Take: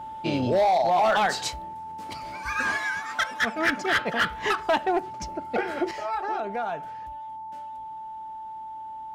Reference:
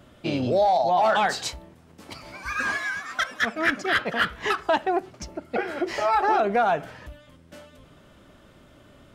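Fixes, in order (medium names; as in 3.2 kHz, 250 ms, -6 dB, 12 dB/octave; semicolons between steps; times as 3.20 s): clip repair -16.5 dBFS; band-stop 880 Hz, Q 30; trim 0 dB, from 5.91 s +9 dB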